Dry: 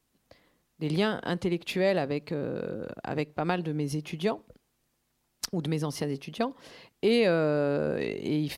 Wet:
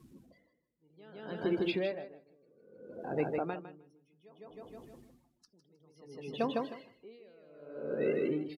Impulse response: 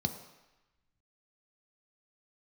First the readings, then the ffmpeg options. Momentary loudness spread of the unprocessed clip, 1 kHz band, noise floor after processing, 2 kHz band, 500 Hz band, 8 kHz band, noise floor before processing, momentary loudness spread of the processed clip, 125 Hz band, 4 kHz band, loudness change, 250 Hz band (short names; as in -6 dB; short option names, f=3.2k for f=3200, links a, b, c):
10 LU, -7.5 dB, -75 dBFS, -10.5 dB, -8.0 dB, under -25 dB, -75 dBFS, 22 LU, -14.5 dB, -11.5 dB, -6.0 dB, -8.5 dB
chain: -filter_complex "[0:a]aeval=exprs='val(0)+0.5*0.0237*sgn(val(0))':c=same,flanger=delay=8.7:depth=7.8:regen=-78:speed=0.89:shape=triangular,aresample=32000,aresample=44100,afftdn=nr=29:nf=-38,highpass=f=200:p=1,asplit=2[a][b];[b]aecho=0:1:156|312|468|624|780:0.708|0.262|0.0969|0.0359|0.0133[c];[a][c]amix=inputs=2:normalize=0,adynamicequalizer=threshold=0.0112:dfrequency=420:dqfactor=1.9:tfrequency=420:tqfactor=1.9:attack=5:release=100:ratio=0.375:range=2:mode=boostabove:tftype=bell,aeval=exprs='val(0)*pow(10,-35*(0.5-0.5*cos(2*PI*0.61*n/s))/20)':c=same"